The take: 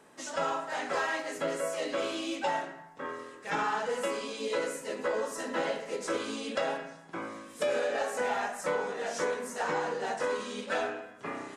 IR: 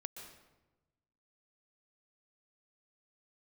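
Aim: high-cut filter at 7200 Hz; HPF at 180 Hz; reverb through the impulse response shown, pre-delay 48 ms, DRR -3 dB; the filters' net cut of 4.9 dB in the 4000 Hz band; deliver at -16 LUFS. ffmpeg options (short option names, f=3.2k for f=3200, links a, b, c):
-filter_complex "[0:a]highpass=180,lowpass=7.2k,equalizer=f=4k:t=o:g=-6.5,asplit=2[a][b];[1:a]atrim=start_sample=2205,adelay=48[c];[b][c]afir=irnorm=-1:irlink=0,volume=6dB[d];[a][d]amix=inputs=2:normalize=0,volume=13dB"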